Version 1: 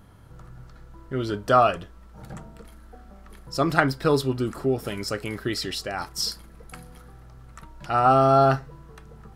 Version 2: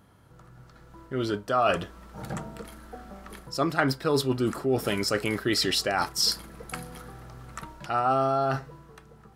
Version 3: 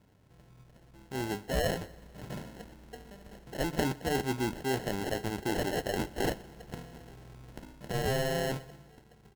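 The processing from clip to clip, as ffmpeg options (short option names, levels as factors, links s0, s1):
-af "areverse,acompressor=threshold=0.0398:ratio=5,areverse,highpass=f=140:p=1,dynaudnorm=f=240:g=9:m=3.35,volume=0.668"
-af "acrusher=samples=37:mix=1:aa=0.000001,aecho=1:1:122|244|366|488:0.075|0.0427|0.0244|0.0139,volume=0.501"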